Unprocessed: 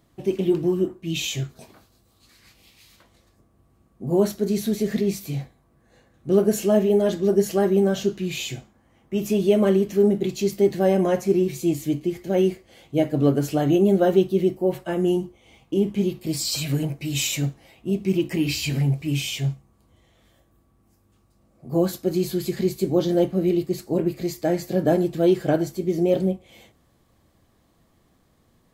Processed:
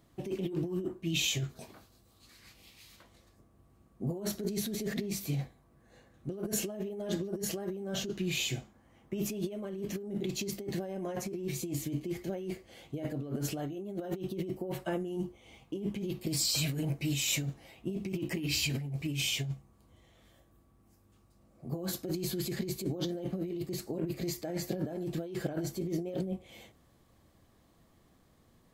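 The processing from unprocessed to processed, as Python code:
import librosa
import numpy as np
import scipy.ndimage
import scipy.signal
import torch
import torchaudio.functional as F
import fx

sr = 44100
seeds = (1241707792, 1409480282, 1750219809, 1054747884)

y = fx.over_compress(x, sr, threshold_db=-27.0, ratio=-1.0)
y = F.gain(torch.from_numpy(y), -8.0).numpy()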